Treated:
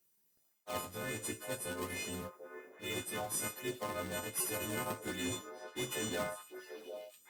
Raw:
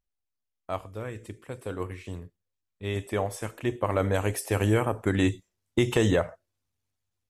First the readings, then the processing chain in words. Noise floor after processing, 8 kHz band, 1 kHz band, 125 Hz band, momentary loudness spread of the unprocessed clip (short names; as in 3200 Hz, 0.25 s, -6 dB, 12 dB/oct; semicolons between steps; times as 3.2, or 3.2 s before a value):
-74 dBFS, +2.0 dB, -8.5 dB, -18.5 dB, 15 LU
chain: frequency quantiser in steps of 3 st; in parallel at -5 dB: decimation with a swept rate 40×, swing 160% 1.3 Hz; on the sum: high shelf 3100 Hz +8 dB; reverse; compressor 8:1, threshold -35 dBFS, peak gain reduction 23.5 dB; reverse; HPF 160 Hz 12 dB/oct; delay with a stepping band-pass 0.745 s, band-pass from 510 Hz, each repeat 1.4 oct, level -6 dB; Opus 32 kbps 48000 Hz